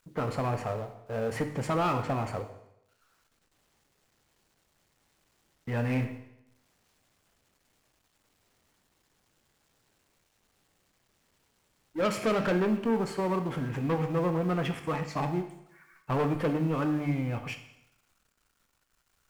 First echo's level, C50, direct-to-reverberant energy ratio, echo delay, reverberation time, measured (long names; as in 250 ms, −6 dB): no echo audible, 10.0 dB, 7.0 dB, no echo audible, 0.85 s